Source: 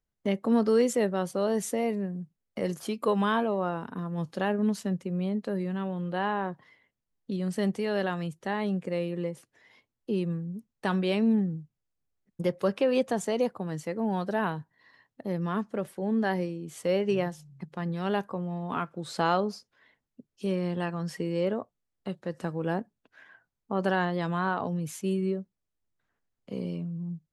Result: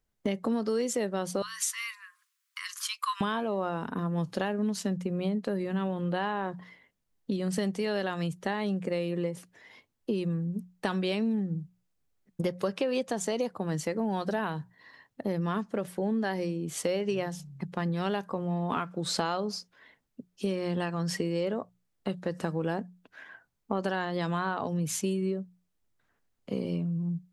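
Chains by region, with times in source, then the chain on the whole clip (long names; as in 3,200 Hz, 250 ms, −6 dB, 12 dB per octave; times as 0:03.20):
0:01.42–0:03.21: linear-phase brick-wall high-pass 980 Hz + one half of a high-frequency compander encoder only
whole clip: mains-hum notches 60/120/180 Hz; dynamic equaliser 5,600 Hz, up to +6 dB, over −51 dBFS, Q 0.73; downward compressor, threshold −32 dBFS; level +5.5 dB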